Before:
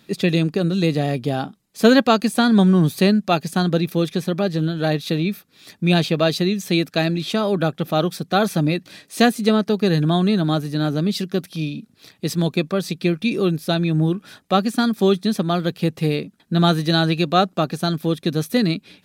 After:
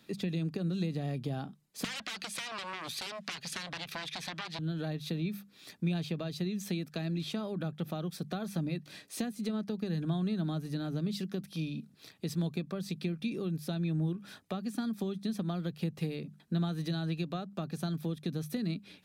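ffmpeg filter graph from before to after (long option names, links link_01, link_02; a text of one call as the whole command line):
ffmpeg -i in.wav -filter_complex "[0:a]asettb=1/sr,asplit=3[link_01][link_02][link_03];[link_01]atrim=end=1.844[link_04];[link_02]atrim=start=1.84:end=4.59,asetpts=PTS-STARTPTS,afade=type=in:duration=0.004:curve=qsin,afade=type=out:start_time=2.746:duration=0.004:curve=qsin,aeval=exprs='0.841*sin(PI/2*8.91*val(0)/0.841)':channel_layout=same,bandpass=frequency=2900:width_type=q:width=0.86[link_05];[link_03]atrim=start=4.586[link_06];[link_04][link_05]acrossfade=duration=0.004:curve1=hsin:curve2=qsin[link_07];[link_07][link_06]acrossfade=duration=0.004:curve1=qsin:curve2=hsin,acompressor=threshold=-17dB:ratio=6,bandreject=frequency=50:width_type=h:width=6,bandreject=frequency=100:width_type=h:width=6,bandreject=frequency=150:width_type=h:width=6,bandreject=frequency=200:width_type=h:width=6,acrossover=split=210[link_08][link_09];[link_09]acompressor=threshold=-31dB:ratio=5[link_10];[link_08][link_10]amix=inputs=2:normalize=0,volume=-7.5dB" out.wav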